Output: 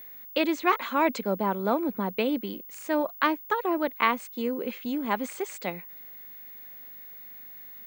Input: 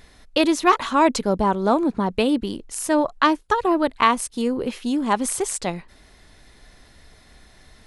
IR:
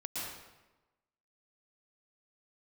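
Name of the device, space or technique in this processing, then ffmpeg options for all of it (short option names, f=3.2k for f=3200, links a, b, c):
old television with a line whistle: -filter_complex "[0:a]asettb=1/sr,asplit=3[a][b][c];[a]atrim=end=3.754[d];[b]atrim=start=3.75:end=5.56,asetpts=PTS-STARTPTS,afade=t=in:d=0.004:c=qsin,afade=t=out:st=1.806:d=0.004:c=qsin,lowpass=f=9.5k:w=0.5412,lowpass=f=9.5k:w=1.3066[e];[c]atrim=start=5.556[f];[d][e]acrossfade=d=0.004:c1=hsin:c2=qsin[g];[g][f]acrossfade=d=0.004:c1=qsin:c2=hsin,highpass=f=190:w=0.5412,highpass=f=190:w=1.3066,equalizer=f=190:t=q:w=4:g=4,equalizer=f=520:t=q:w=4:g=4,equalizer=f=1.5k:t=q:w=4:g=3,equalizer=f=2.2k:t=q:w=4:g=8,equalizer=f=5.5k:t=q:w=4:g=-9,lowpass=f=7.1k:w=0.5412,lowpass=f=7.1k:w=1.3066,aeval=exprs='val(0)+0.02*sin(2*PI*15625*n/s)':c=same,volume=-8dB"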